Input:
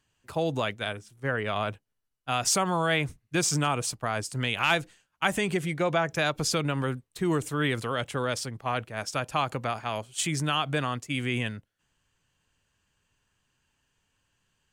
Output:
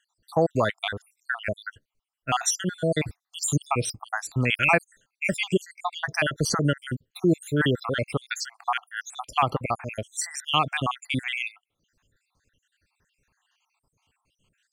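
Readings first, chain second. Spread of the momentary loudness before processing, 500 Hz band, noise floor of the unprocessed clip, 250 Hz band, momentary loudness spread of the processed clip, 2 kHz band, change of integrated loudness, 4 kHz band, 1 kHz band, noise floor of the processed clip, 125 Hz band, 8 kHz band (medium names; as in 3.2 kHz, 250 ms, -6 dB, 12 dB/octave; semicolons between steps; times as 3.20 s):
8 LU, +1.5 dB, -78 dBFS, +2.0 dB, 10 LU, +2.5 dB, +2.0 dB, +0.5 dB, +1.5 dB, -83 dBFS, +2.0 dB, +0.5 dB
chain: random holes in the spectrogram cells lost 70%; treble shelf 8.2 kHz -4.5 dB; trim +7 dB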